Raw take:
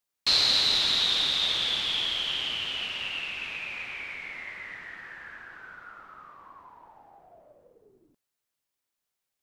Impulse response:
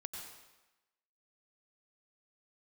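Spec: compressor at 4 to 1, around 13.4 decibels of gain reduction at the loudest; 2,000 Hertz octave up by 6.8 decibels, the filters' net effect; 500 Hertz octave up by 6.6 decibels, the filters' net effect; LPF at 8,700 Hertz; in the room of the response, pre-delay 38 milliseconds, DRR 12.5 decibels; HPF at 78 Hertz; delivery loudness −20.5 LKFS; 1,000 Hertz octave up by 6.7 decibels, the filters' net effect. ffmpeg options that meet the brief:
-filter_complex "[0:a]highpass=78,lowpass=8700,equalizer=frequency=500:width_type=o:gain=6.5,equalizer=frequency=1000:width_type=o:gain=4.5,equalizer=frequency=2000:width_type=o:gain=7.5,acompressor=threshold=-34dB:ratio=4,asplit=2[link_01][link_02];[1:a]atrim=start_sample=2205,adelay=38[link_03];[link_02][link_03]afir=irnorm=-1:irlink=0,volume=-10.5dB[link_04];[link_01][link_04]amix=inputs=2:normalize=0,volume=13dB"

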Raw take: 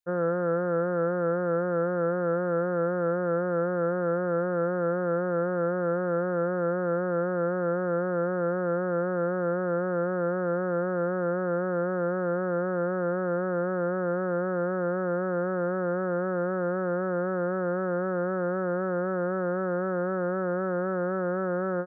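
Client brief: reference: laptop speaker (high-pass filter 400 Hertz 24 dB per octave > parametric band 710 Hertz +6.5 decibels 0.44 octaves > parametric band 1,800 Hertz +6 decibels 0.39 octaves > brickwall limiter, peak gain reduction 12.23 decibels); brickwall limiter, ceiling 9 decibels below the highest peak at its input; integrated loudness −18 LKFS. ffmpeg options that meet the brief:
ffmpeg -i in.wav -af "alimiter=level_in=3dB:limit=-24dB:level=0:latency=1,volume=-3dB,highpass=frequency=400:width=0.5412,highpass=frequency=400:width=1.3066,equalizer=frequency=710:width_type=o:width=0.44:gain=6.5,equalizer=frequency=1800:width_type=o:width=0.39:gain=6,volume=28dB,alimiter=limit=-11dB:level=0:latency=1" out.wav

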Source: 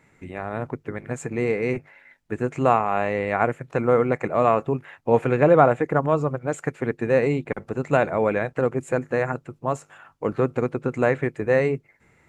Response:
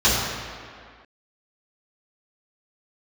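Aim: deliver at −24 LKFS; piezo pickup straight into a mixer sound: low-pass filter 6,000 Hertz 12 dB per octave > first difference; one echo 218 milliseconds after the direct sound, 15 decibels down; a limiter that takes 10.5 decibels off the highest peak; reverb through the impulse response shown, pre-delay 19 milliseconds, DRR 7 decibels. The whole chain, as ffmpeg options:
-filter_complex "[0:a]alimiter=limit=-12.5dB:level=0:latency=1,aecho=1:1:218:0.178,asplit=2[link_01][link_02];[1:a]atrim=start_sample=2205,adelay=19[link_03];[link_02][link_03]afir=irnorm=-1:irlink=0,volume=-28dB[link_04];[link_01][link_04]amix=inputs=2:normalize=0,lowpass=6000,aderivative,volume=21dB"

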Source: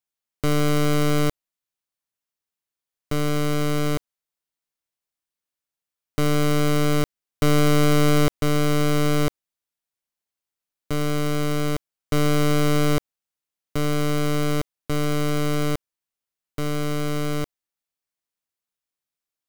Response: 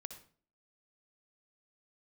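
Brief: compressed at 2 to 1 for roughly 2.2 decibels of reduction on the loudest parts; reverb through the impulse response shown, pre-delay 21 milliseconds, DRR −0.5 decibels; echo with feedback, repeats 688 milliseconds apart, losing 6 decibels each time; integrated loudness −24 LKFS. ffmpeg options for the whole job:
-filter_complex "[0:a]acompressor=threshold=-23dB:ratio=2,aecho=1:1:688|1376|2064|2752|3440|4128:0.501|0.251|0.125|0.0626|0.0313|0.0157,asplit=2[link_01][link_02];[1:a]atrim=start_sample=2205,adelay=21[link_03];[link_02][link_03]afir=irnorm=-1:irlink=0,volume=4.5dB[link_04];[link_01][link_04]amix=inputs=2:normalize=0,volume=-2.5dB"

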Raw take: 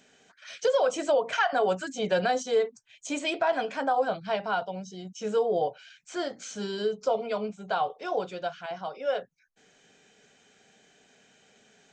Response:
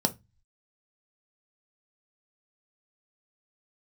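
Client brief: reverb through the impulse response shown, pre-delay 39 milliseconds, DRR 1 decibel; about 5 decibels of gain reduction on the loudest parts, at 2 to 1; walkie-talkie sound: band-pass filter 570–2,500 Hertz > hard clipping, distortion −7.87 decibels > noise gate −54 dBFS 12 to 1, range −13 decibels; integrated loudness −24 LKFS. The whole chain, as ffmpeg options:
-filter_complex "[0:a]acompressor=threshold=-29dB:ratio=2,asplit=2[link_01][link_02];[1:a]atrim=start_sample=2205,adelay=39[link_03];[link_02][link_03]afir=irnorm=-1:irlink=0,volume=-9.5dB[link_04];[link_01][link_04]amix=inputs=2:normalize=0,highpass=570,lowpass=2500,asoftclip=type=hard:threshold=-30dB,agate=range=-13dB:threshold=-54dB:ratio=12,volume=11dB"

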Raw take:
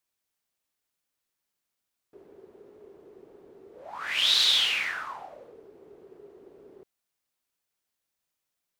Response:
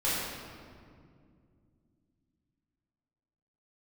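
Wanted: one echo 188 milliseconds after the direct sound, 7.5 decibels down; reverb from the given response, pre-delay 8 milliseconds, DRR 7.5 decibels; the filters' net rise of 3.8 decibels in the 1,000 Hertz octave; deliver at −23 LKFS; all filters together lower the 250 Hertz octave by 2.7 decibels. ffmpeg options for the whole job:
-filter_complex "[0:a]equalizer=frequency=250:width_type=o:gain=-5,equalizer=frequency=1000:width_type=o:gain=5,aecho=1:1:188:0.422,asplit=2[link_01][link_02];[1:a]atrim=start_sample=2205,adelay=8[link_03];[link_02][link_03]afir=irnorm=-1:irlink=0,volume=-18dB[link_04];[link_01][link_04]amix=inputs=2:normalize=0,volume=-1dB"

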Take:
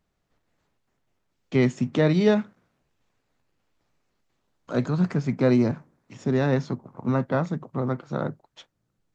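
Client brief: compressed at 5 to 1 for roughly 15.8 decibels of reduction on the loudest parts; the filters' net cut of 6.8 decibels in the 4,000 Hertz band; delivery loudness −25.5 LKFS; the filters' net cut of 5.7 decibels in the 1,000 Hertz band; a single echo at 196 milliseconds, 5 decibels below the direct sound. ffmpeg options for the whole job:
ffmpeg -i in.wav -af "equalizer=frequency=1000:width_type=o:gain=-7.5,equalizer=frequency=4000:width_type=o:gain=-8,acompressor=threshold=-35dB:ratio=5,aecho=1:1:196:0.562,volume=12.5dB" out.wav

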